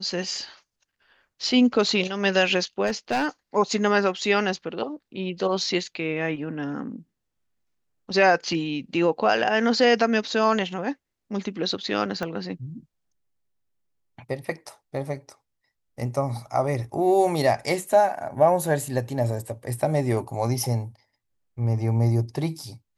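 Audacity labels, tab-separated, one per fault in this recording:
2.860000	3.270000	clipping −19 dBFS
12.230000	12.230000	click −16 dBFS

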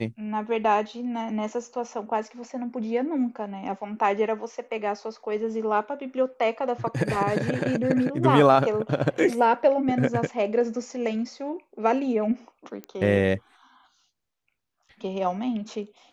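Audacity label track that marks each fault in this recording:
12.840000	12.840000	click −22 dBFS

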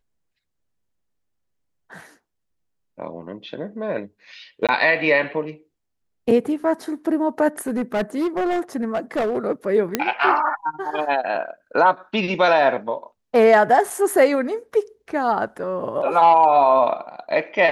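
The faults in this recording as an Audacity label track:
4.670000	4.690000	drop-out 17 ms
7.590000	9.380000	clipping −18 dBFS
9.950000	9.950000	click −4 dBFS
13.900000	13.900000	drop-out 4.1 ms

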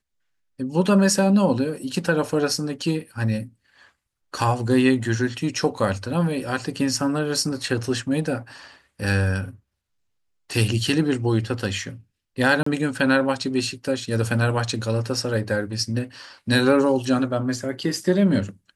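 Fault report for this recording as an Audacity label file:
12.630000	12.660000	drop-out 34 ms

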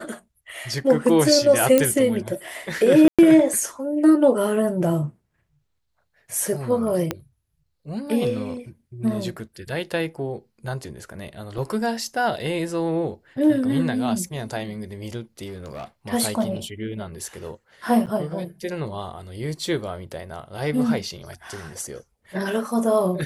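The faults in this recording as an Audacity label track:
1.780000	1.780000	click −4 dBFS
3.080000	3.190000	drop-out 106 ms
7.110000	7.110000	click −9 dBFS
11.580000	11.580000	drop-out 3.3 ms
15.450000	15.840000	clipping −29.5 dBFS
18.060000	18.070000	drop-out 7.9 ms

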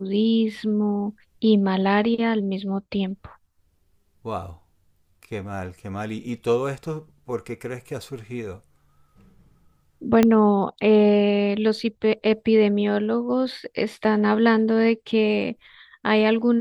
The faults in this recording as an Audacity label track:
10.230000	10.230000	click −5 dBFS

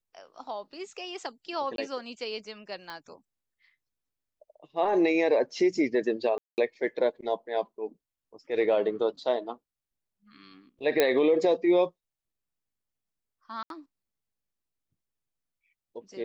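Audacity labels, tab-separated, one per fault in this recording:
1.760000	1.780000	drop-out 22 ms
2.900000	2.900000	click −25 dBFS
6.380000	6.580000	drop-out 199 ms
11.000000	11.000000	click −8 dBFS
13.630000	13.700000	drop-out 72 ms

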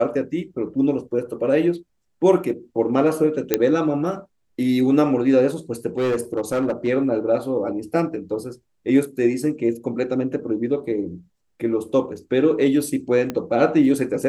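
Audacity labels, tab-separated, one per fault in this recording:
3.540000	3.540000	click −2 dBFS
5.980000	6.880000	clipping −16.5 dBFS
13.300000	13.300000	click −12 dBFS

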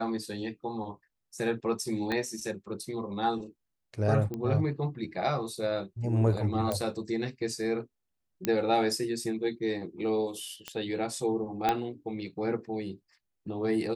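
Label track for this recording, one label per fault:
2.120000	2.120000	click −18 dBFS
4.340000	4.340000	click −23 dBFS
6.720000	6.720000	click −16 dBFS
8.450000	8.450000	click −12 dBFS
10.680000	10.680000	click −19 dBFS
11.690000	11.690000	click −12 dBFS

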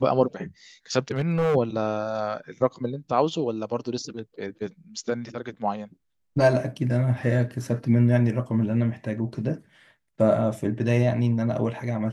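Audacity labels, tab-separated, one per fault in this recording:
1.110000	1.560000	clipping −19 dBFS

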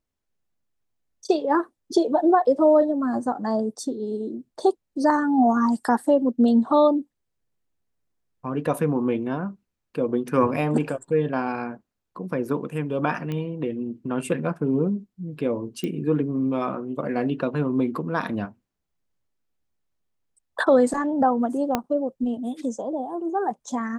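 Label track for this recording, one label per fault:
13.320000	13.320000	click −19 dBFS
15.840000	15.840000	click −17 dBFS
21.750000	21.750000	click −8 dBFS

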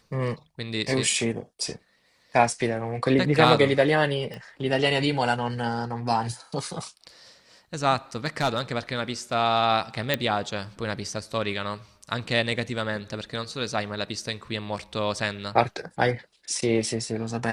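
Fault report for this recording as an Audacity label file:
4.340000	4.340000	click −24 dBFS
8.260000	8.610000	clipping −17 dBFS
10.140000	10.140000	click −8 dBFS

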